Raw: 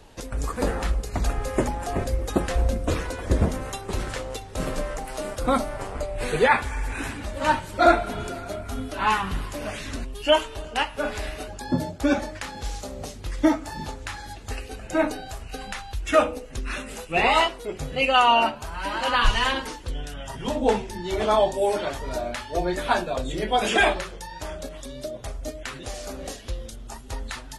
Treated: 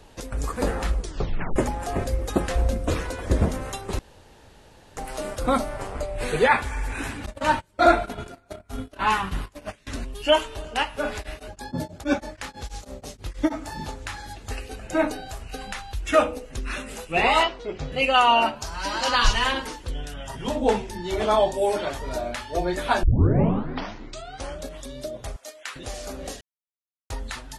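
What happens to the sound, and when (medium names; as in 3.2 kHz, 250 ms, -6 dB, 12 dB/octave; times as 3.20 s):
0.97 s: tape stop 0.59 s
3.99–4.97 s: room tone
7.26–9.87 s: gate -31 dBFS, range -25 dB
11.16–13.58 s: tremolo of two beating tones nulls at 6.2 Hz
17.43–17.92 s: low-pass 5.7 kHz 24 dB/octave
18.61–19.33 s: FFT filter 2.9 kHz 0 dB, 5.5 kHz +13 dB, 9.6 kHz +1 dB
23.03 s: tape start 1.59 s
25.36–25.76 s: high-pass 880 Hz
26.41–27.10 s: mute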